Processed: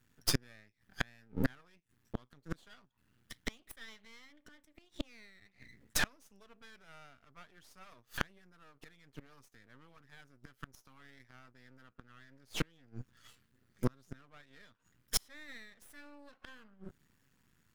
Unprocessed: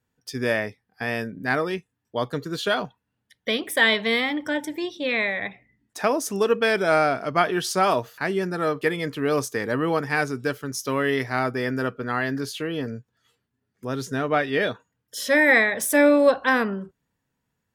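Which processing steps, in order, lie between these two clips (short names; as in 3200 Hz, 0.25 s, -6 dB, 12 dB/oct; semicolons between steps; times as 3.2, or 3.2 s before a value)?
flipped gate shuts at -22 dBFS, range -39 dB; band shelf 550 Hz -9.5 dB; half-wave rectifier; gain +10.5 dB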